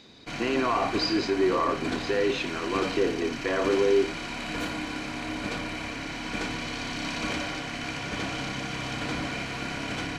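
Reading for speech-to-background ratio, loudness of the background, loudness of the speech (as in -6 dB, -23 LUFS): 5.5 dB, -32.5 LUFS, -27.0 LUFS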